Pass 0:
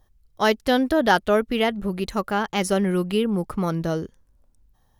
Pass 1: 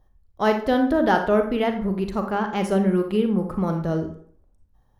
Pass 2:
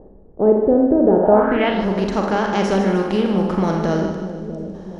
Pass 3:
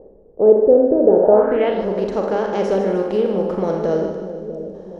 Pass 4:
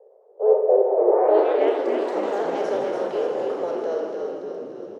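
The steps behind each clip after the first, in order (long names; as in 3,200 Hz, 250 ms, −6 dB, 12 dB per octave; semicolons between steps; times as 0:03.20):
high-shelf EQ 2,100 Hz −11.5 dB; convolution reverb RT60 0.55 s, pre-delay 32 ms, DRR 5 dB
compressor on every frequency bin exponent 0.6; echo with a time of its own for lows and highs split 600 Hz, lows 642 ms, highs 152 ms, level −9.5 dB; low-pass filter sweep 450 Hz → 5,900 Hz, 0:01.19–0:01.86
parametric band 490 Hz +14 dB 0.94 octaves; level −8 dB
Butterworth high-pass 400 Hz 96 dB per octave; on a send: echo with shifted repeats 288 ms, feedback 60%, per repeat −37 Hz, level −5 dB; on the sum: delay with pitch and tempo change per echo 104 ms, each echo +3 semitones, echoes 2, each echo −6 dB; level −6.5 dB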